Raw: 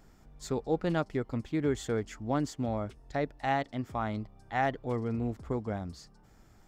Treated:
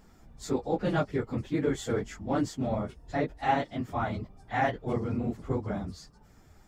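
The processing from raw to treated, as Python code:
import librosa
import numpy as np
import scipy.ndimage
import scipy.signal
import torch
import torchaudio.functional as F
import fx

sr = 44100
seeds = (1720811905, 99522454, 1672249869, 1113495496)

y = fx.phase_scramble(x, sr, seeds[0], window_ms=50)
y = F.gain(torch.from_numpy(y), 2.0).numpy()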